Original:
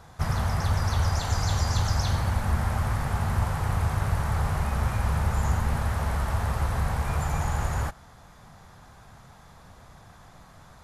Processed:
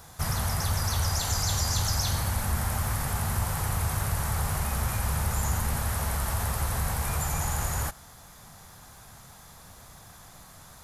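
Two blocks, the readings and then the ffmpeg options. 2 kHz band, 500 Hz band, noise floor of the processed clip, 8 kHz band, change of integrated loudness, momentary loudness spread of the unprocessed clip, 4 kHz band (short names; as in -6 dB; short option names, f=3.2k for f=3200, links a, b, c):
-1.0 dB, -2.5 dB, -50 dBFS, +9.0 dB, -1.0 dB, 3 LU, +4.0 dB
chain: -filter_complex "[0:a]aemphasis=mode=production:type=75fm,asplit=2[a][b];[b]alimiter=limit=-22dB:level=0:latency=1,volume=-2dB[c];[a][c]amix=inputs=2:normalize=0,volume=-5.5dB"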